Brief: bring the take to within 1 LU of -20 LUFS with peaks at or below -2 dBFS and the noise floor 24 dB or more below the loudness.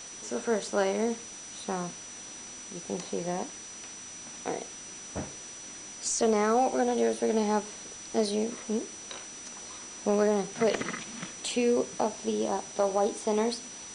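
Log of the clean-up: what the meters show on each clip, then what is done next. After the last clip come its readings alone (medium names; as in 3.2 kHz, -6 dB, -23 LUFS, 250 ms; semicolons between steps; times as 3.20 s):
steady tone 5.9 kHz; tone level -43 dBFS; noise floor -44 dBFS; noise floor target -55 dBFS; loudness -31.0 LUFS; peak level -14.0 dBFS; loudness target -20.0 LUFS
-> band-stop 5.9 kHz, Q 30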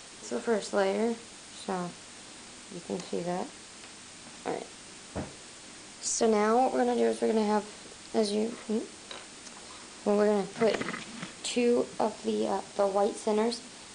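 steady tone not found; noise floor -48 dBFS; noise floor target -54 dBFS
-> noise reduction 6 dB, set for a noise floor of -48 dBFS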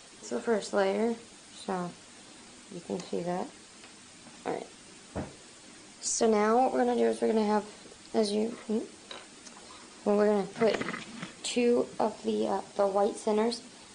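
noise floor -52 dBFS; noise floor target -54 dBFS
-> noise reduction 6 dB, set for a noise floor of -52 dBFS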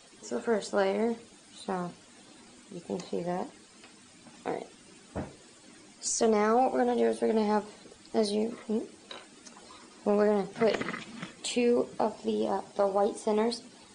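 noise floor -56 dBFS; loudness -30.0 LUFS; peak level -14.0 dBFS; loudness target -20.0 LUFS
-> trim +10 dB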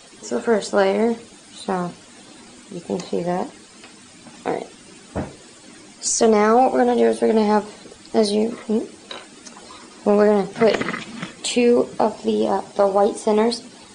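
loudness -20.0 LUFS; peak level -4.0 dBFS; noise floor -46 dBFS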